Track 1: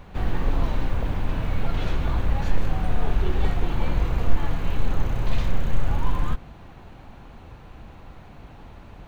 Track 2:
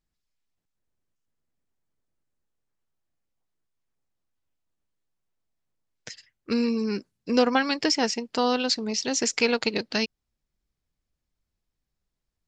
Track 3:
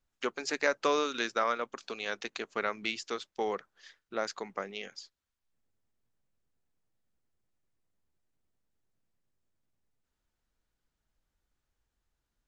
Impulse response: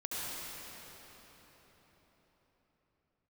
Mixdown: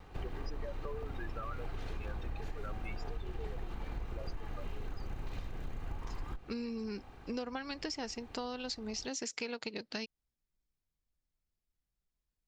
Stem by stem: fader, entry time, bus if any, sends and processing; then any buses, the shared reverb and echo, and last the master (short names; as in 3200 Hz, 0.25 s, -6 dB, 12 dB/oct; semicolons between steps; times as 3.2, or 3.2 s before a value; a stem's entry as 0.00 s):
-7.0 dB, 0.00 s, no send, minimum comb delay 2.5 ms; notch 3400 Hz, Q 18
-8.5 dB, 0.00 s, no send, dry
-5.5 dB, 0.00 s, no send, spectral contrast raised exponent 3.7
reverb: off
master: compressor 6:1, threshold -36 dBFS, peak gain reduction 13 dB